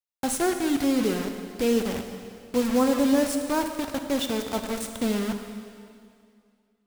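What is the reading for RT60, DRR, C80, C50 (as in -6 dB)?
2.3 s, 5.0 dB, 7.5 dB, 6.5 dB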